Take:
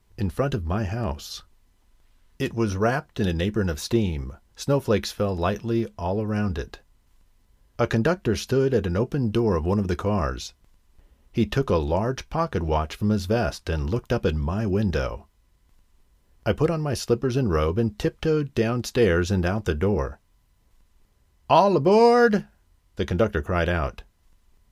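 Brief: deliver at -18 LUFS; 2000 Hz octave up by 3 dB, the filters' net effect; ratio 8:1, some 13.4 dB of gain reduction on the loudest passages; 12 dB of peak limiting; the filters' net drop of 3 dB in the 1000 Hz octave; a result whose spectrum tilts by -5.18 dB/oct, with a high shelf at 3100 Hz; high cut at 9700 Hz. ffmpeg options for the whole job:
-af "lowpass=9.7k,equalizer=f=1k:t=o:g=-6,equalizer=f=2k:t=o:g=4,highshelf=f=3.1k:g=8,acompressor=threshold=-28dB:ratio=8,volume=18dB,alimiter=limit=-8dB:level=0:latency=1"

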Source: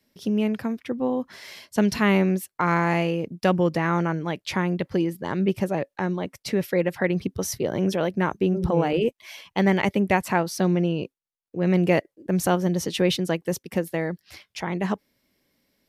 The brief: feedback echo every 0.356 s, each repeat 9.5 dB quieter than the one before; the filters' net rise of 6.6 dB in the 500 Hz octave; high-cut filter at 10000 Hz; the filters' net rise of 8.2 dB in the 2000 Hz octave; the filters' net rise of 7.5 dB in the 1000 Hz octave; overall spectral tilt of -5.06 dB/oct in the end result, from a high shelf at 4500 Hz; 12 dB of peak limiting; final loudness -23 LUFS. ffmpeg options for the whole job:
-af "lowpass=10k,equalizer=f=500:t=o:g=6.5,equalizer=f=1k:t=o:g=5.5,equalizer=f=2k:t=o:g=6.5,highshelf=f=4.5k:g=7.5,alimiter=limit=-11.5dB:level=0:latency=1,aecho=1:1:356|712|1068|1424:0.335|0.111|0.0365|0.012"

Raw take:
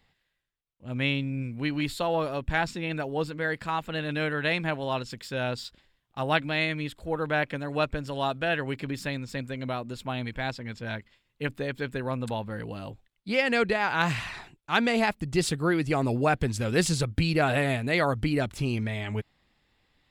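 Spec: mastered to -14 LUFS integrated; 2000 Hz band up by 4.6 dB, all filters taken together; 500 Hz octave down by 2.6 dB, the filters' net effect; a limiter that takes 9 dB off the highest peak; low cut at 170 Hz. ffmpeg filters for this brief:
-af "highpass=170,equalizer=f=500:t=o:g=-3.5,equalizer=f=2k:t=o:g=6,volume=15dB,alimiter=limit=0dB:level=0:latency=1"

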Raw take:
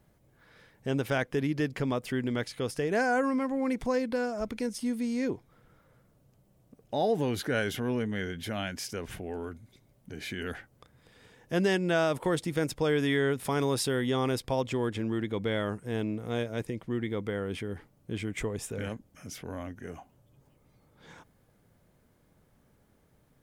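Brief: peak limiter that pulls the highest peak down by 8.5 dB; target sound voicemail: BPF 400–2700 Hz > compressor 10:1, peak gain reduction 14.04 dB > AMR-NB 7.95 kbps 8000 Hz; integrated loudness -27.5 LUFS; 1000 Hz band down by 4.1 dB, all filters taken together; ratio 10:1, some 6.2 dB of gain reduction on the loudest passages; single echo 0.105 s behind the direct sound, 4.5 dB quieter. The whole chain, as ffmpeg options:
-af "equalizer=f=1k:t=o:g=-5.5,acompressor=threshold=-29dB:ratio=10,alimiter=level_in=3.5dB:limit=-24dB:level=0:latency=1,volume=-3.5dB,highpass=400,lowpass=2.7k,aecho=1:1:105:0.596,acompressor=threshold=-45dB:ratio=10,volume=23dB" -ar 8000 -c:a libopencore_amrnb -b:a 7950

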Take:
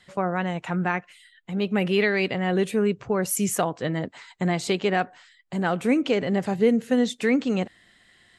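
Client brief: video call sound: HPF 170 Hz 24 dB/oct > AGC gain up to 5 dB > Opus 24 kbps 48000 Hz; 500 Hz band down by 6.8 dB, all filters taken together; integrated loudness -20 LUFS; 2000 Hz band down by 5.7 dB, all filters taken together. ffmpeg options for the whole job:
-af "highpass=f=170:w=0.5412,highpass=f=170:w=1.3066,equalizer=f=500:t=o:g=-8.5,equalizer=f=2k:t=o:g=-6.5,dynaudnorm=m=5dB,volume=9dB" -ar 48000 -c:a libopus -b:a 24k

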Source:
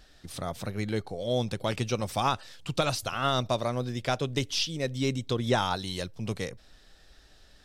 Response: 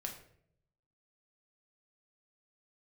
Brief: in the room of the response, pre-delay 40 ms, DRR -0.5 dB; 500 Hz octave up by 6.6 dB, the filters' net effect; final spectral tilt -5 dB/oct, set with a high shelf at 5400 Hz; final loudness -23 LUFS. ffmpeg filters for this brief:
-filter_complex "[0:a]equalizer=f=500:t=o:g=8,highshelf=f=5.4k:g=-6.5,asplit=2[a][b];[1:a]atrim=start_sample=2205,adelay=40[c];[b][c]afir=irnorm=-1:irlink=0,volume=1.5dB[d];[a][d]amix=inputs=2:normalize=0,volume=1dB"

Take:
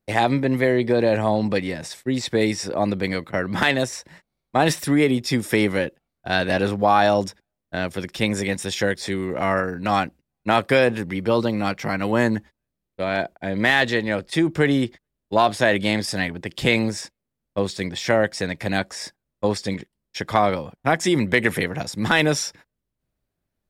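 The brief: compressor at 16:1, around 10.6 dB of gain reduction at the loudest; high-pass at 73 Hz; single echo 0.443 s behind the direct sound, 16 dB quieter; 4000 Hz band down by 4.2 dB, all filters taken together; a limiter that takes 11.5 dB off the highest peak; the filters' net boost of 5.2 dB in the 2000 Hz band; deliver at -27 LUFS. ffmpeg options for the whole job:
-af "highpass=73,equalizer=f=2k:t=o:g=8,equalizer=f=4k:t=o:g=-8.5,acompressor=threshold=-20dB:ratio=16,alimiter=limit=-18.5dB:level=0:latency=1,aecho=1:1:443:0.158,volume=3dB"

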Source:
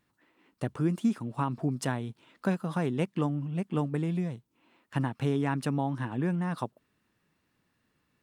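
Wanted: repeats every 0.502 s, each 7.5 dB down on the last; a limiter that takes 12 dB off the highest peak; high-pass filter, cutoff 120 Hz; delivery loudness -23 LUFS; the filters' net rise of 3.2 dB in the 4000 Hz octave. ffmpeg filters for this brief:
-af "highpass=120,equalizer=f=4k:t=o:g=4.5,alimiter=level_in=2dB:limit=-24dB:level=0:latency=1,volume=-2dB,aecho=1:1:502|1004|1506|2008|2510:0.422|0.177|0.0744|0.0312|0.0131,volume=13dB"

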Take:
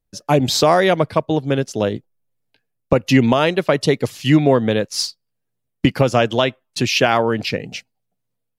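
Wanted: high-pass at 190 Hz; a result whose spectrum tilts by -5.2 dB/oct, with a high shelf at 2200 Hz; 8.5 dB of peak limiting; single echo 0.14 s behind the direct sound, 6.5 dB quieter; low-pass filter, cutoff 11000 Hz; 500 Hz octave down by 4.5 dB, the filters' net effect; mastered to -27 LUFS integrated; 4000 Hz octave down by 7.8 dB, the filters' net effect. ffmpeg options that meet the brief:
-af "highpass=190,lowpass=11k,equalizer=f=500:t=o:g=-5,highshelf=f=2.2k:g=-6,equalizer=f=4k:t=o:g=-4.5,alimiter=limit=-12.5dB:level=0:latency=1,aecho=1:1:140:0.473,volume=-3dB"

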